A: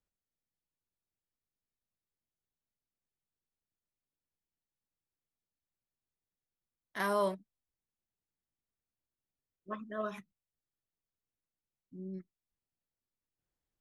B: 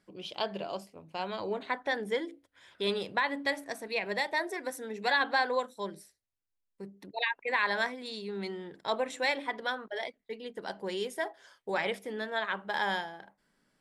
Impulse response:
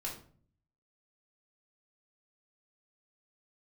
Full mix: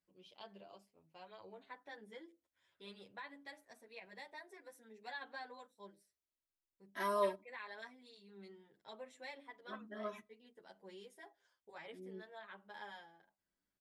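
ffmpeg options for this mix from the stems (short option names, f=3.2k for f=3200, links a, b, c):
-filter_complex "[0:a]highpass=44,aecho=1:1:3.1:0.8,volume=-5dB,asplit=2[a][b];[b]volume=-23.5dB[c];[1:a]volume=-17.5dB[d];[2:a]atrim=start_sample=2205[e];[c][e]afir=irnorm=-1:irlink=0[f];[a][d][f]amix=inputs=3:normalize=0,asplit=2[g][h];[h]adelay=8.8,afreqshift=0.75[i];[g][i]amix=inputs=2:normalize=1"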